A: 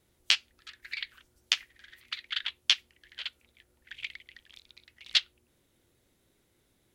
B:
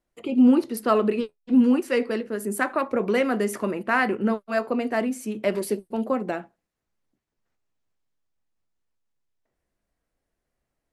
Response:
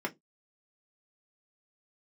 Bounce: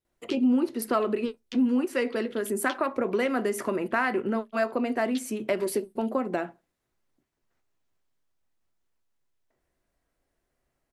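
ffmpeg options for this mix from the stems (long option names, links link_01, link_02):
-filter_complex "[0:a]volume=-18.5dB[link_01];[1:a]acompressor=threshold=-28dB:ratio=2.5,adelay=50,volume=2dB,asplit=2[link_02][link_03];[link_03]volume=-18.5dB[link_04];[2:a]atrim=start_sample=2205[link_05];[link_04][link_05]afir=irnorm=-1:irlink=0[link_06];[link_01][link_02][link_06]amix=inputs=3:normalize=0"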